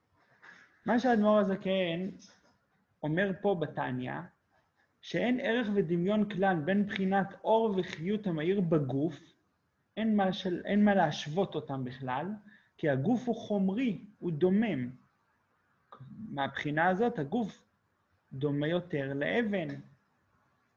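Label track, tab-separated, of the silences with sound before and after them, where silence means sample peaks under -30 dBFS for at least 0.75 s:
2.070000	3.040000	silence
4.200000	5.140000	silence
9.080000	9.980000	silence
14.850000	16.380000	silence
17.460000	18.430000	silence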